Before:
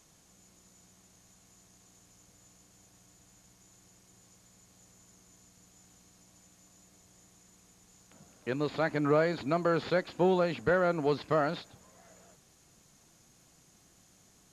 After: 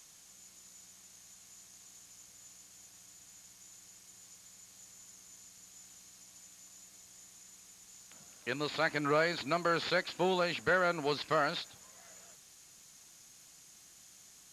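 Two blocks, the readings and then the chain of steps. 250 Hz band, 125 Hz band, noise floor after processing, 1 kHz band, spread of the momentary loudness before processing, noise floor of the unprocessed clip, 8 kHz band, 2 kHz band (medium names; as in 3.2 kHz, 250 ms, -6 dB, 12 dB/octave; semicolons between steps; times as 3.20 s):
-6.5 dB, -7.0 dB, -58 dBFS, -0.5 dB, 7 LU, -63 dBFS, +7.0 dB, +3.0 dB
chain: tilt shelf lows -7.5 dB, about 1.1 kHz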